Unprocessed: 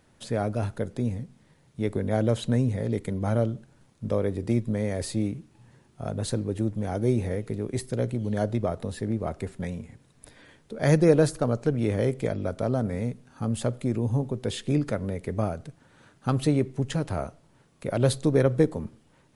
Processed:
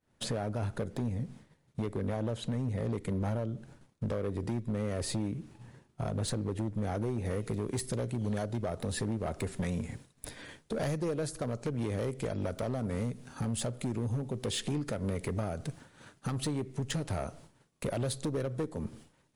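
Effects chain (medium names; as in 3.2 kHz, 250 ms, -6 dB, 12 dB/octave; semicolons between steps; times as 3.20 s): expander -49 dBFS; treble shelf 3.5 kHz -2.5 dB, from 7.25 s +5 dB; compression 12:1, threshold -34 dBFS, peak gain reduction 21 dB; hard clipper -34 dBFS, distortion -12 dB; trim +6.5 dB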